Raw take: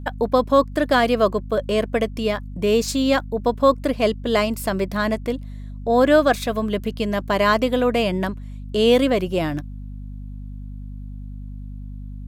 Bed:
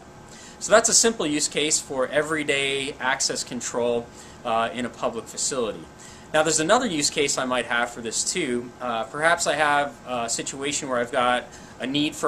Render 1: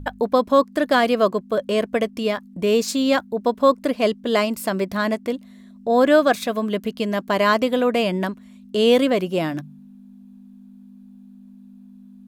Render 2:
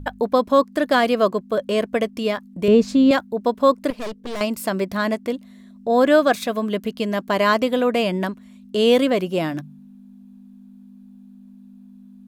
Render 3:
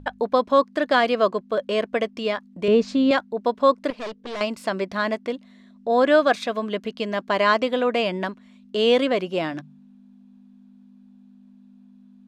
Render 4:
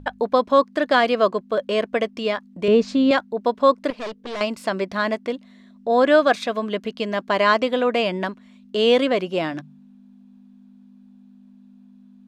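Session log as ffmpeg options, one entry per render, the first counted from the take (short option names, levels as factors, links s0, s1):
-af "bandreject=f=50:t=h:w=4,bandreject=f=100:t=h:w=4,bandreject=f=150:t=h:w=4"
-filter_complex "[0:a]asettb=1/sr,asplit=3[s0][s1][s2];[s0]atrim=end=2.684[s3];[s1]atrim=start=2.68:end=3.11,asetpts=PTS-STARTPTS,afade=t=in:d=0.004:c=qsin,afade=t=out:st=0.426:d=0.004:c=qsin,aemphasis=mode=reproduction:type=riaa[s4];[s2]atrim=start=3.106[s5];[s3][s4]acrossfade=d=0.004:c1=hsin:c2=qsin[s6];[s6][s5]acrossfade=d=0.004:c1=qsin:c2=hsin,asettb=1/sr,asplit=3[s7][s8][s9];[s7]atrim=end=3.904[s10];[s8]atrim=start=3.9:end=4.41,asetpts=PTS-STARTPTS,afade=t=in:d=0.004:c=qsin,afade=t=out:st=0.506:d=0.004:c=qsin,aeval=exprs='(tanh(22.4*val(0)+0.75)-tanh(0.75))/22.4':c=same[s11];[s9]atrim=start=4.406[s12];[s10][s11]acrossfade=d=0.004:c1=hsin:c2=qsin[s13];[s13][s12]acrossfade=d=0.004:c1=qsin:c2=hsin"
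-af "lowpass=5200,lowshelf=f=250:g=-10"
-af "volume=1.19"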